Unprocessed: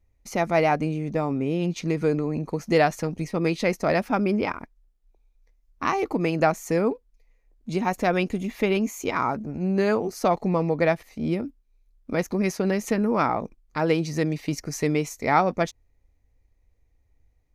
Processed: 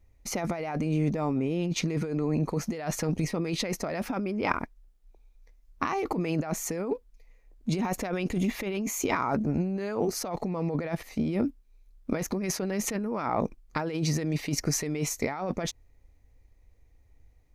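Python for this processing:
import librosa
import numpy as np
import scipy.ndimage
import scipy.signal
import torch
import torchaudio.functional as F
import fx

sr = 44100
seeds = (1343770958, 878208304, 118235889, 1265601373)

y = fx.over_compress(x, sr, threshold_db=-29.0, ratio=-1.0)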